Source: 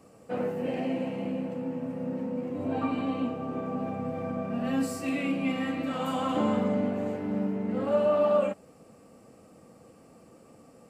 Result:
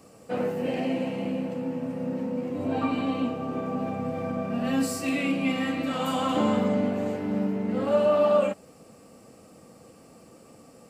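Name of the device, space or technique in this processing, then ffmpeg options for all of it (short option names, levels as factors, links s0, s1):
presence and air boost: -af "equalizer=f=4500:t=o:w=1.6:g=4.5,highshelf=f=9600:g=6,volume=1.33"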